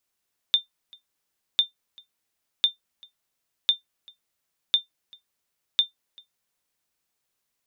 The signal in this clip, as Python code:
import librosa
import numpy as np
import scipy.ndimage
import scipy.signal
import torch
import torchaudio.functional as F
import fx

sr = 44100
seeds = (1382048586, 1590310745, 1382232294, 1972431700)

y = fx.sonar_ping(sr, hz=3590.0, decay_s=0.13, every_s=1.05, pings=6, echo_s=0.39, echo_db=-28.0, level_db=-10.0)